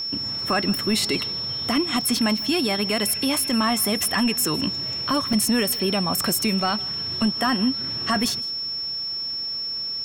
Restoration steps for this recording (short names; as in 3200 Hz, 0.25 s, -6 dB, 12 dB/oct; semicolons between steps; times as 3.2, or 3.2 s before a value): notch 5400 Hz, Q 30; interpolate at 2.01/2.37/5.33, 2.9 ms; inverse comb 0.159 s -22 dB